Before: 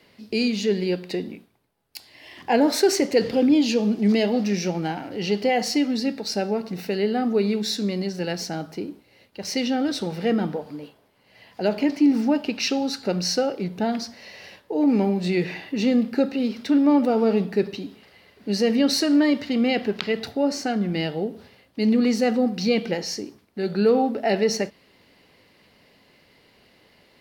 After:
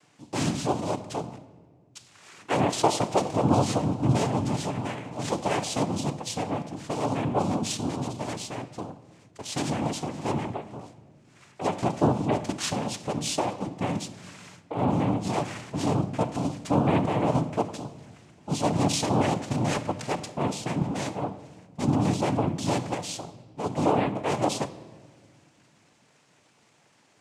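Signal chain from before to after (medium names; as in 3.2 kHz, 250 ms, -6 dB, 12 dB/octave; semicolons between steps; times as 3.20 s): noise-vocoded speech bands 4; on a send: reverberation RT60 1.7 s, pre-delay 7 ms, DRR 12.5 dB; on the sum: trim -5 dB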